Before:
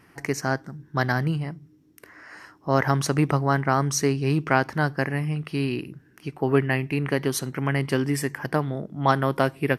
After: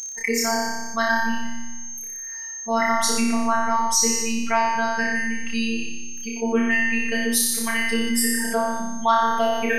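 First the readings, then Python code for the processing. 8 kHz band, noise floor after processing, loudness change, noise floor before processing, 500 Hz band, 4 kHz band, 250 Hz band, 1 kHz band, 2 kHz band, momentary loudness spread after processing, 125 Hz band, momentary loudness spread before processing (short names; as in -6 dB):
+11.5 dB, -34 dBFS, +2.5 dB, -57 dBFS, 0.0 dB, +9.0 dB, +1.5 dB, +4.5 dB, +5.5 dB, 11 LU, -20.0 dB, 10 LU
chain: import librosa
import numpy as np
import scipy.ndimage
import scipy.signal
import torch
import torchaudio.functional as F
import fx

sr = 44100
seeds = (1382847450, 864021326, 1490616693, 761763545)

p1 = fx.bin_expand(x, sr, power=2.0)
p2 = fx.tilt_eq(p1, sr, slope=2.0)
p3 = fx.rider(p2, sr, range_db=10, speed_s=0.5)
p4 = p2 + (p3 * 10.0 ** (-2.5 / 20.0))
p5 = p4 + 10.0 ** (-41.0 / 20.0) * np.sin(2.0 * np.pi * 6300.0 * np.arange(len(p4)) / sr)
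p6 = fx.robotise(p5, sr, hz=227.0)
p7 = fx.doubler(p6, sr, ms=13.0, db=-12.5)
p8 = p7 + fx.room_flutter(p7, sr, wall_m=5.1, rt60_s=0.89, dry=0)
p9 = fx.rev_freeverb(p8, sr, rt60_s=0.43, hf_ratio=0.5, predelay_ms=45, drr_db=12.5)
p10 = fx.env_flatten(p9, sr, amount_pct=50)
y = p10 * 10.0 ** (-2.5 / 20.0)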